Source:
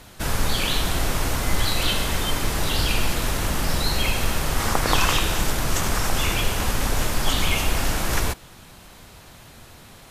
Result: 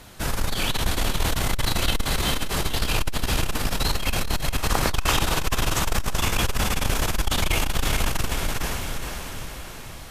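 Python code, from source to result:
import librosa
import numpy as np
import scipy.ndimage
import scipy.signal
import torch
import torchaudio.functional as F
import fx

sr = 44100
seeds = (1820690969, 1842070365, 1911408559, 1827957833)

p1 = x + fx.echo_diffused(x, sr, ms=462, feedback_pct=53, wet_db=-3.5, dry=0)
y = fx.transformer_sat(p1, sr, knee_hz=110.0)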